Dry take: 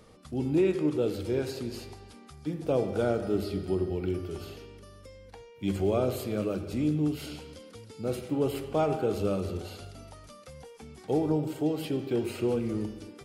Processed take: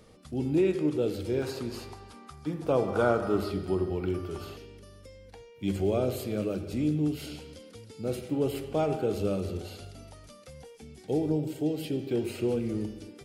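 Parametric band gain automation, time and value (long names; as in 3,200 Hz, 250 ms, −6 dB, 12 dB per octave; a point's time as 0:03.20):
parametric band 1,100 Hz 0.86 octaves
−3.5 dB
from 0:01.42 +8 dB
from 0:02.88 +14.5 dB
from 0:03.52 +6.5 dB
from 0:04.57 −5 dB
from 0:10.75 −13 dB
from 0:12.08 −6.5 dB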